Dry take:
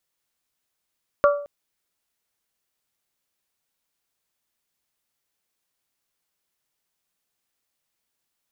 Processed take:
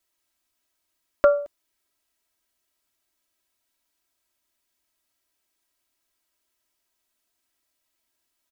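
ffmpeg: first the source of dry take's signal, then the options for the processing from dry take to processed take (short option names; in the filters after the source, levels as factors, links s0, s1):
-f lavfi -i "aevalsrc='0.266*pow(10,-3*t/0.53)*sin(2*PI*577*t)+0.168*pow(10,-3*t/0.326)*sin(2*PI*1154*t)+0.106*pow(10,-3*t/0.287)*sin(2*PI*1384.8*t)':d=0.22:s=44100"
-af "aecho=1:1:3.1:0.84"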